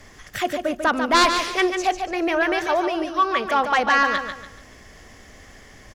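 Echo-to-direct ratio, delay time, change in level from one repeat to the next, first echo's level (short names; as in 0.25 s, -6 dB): -6.5 dB, 0.144 s, -9.5 dB, -7.0 dB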